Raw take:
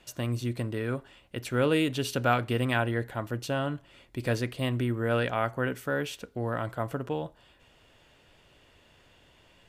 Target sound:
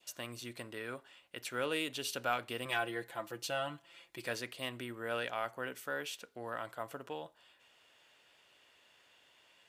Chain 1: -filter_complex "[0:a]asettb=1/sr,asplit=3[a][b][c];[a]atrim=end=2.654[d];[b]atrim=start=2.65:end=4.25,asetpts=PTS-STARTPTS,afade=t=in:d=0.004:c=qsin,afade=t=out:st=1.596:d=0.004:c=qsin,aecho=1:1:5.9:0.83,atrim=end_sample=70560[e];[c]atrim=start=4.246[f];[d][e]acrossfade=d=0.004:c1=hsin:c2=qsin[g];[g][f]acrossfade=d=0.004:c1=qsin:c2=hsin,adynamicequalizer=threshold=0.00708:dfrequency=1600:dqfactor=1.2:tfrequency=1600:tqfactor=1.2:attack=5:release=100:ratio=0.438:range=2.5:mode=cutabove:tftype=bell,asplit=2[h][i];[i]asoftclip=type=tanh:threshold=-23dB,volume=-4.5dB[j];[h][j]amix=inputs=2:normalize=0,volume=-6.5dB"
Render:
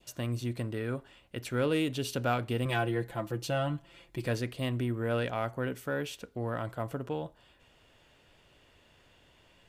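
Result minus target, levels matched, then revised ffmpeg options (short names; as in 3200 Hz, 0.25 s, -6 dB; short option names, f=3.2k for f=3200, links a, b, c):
1000 Hz band -3.0 dB
-filter_complex "[0:a]asettb=1/sr,asplit=3[a][b][c];[a]atrim=end=2.654[d];[b]atrim=start=2.65:end=4.25,asetpts=PTS-STARTPTS,afade=t=in:d=0.004:c=qsin,afade=t=out:st=1.596:d=0.004:c=qsin,aecho=1:1:5.9:0.83,atrim=end_sample=70560[e];[c]atrim=start=4.246[f];[d][e]acrossfade=d=0.004:c1=hsin:c2=qsin[g];[g][f]acrossfade=d=0.004:c1=qsin:c2=hsin,adynamicequalizer=threshold=0.00708:dfrequency=1600:dqfactor=1.2:tfrequency=1600:tqfactor=1.2:attack=5:release=100:ratio=0.438:range=2.5:mode=cutabove:tftype=bell,highpass=f=1.1k:p=1,asplit=2[h][i];[i]asoftclip=type=tanh:threshold=-23dB,volume=-4.5dB[j];[h][j]amix=inputs=2:normalize=0,volume=-6.5dB"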